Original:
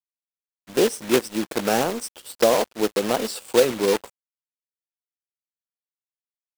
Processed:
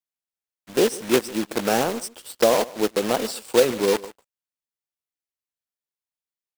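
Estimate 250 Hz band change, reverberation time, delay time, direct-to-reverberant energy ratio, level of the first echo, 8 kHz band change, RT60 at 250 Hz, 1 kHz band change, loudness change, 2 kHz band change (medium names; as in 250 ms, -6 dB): 0.0 dB, no reverb, 147 ms, no reverb, -20.0 dB, 0.0 dB, no reverb, 0.0 dB, 0.0 dB, 0.0 dB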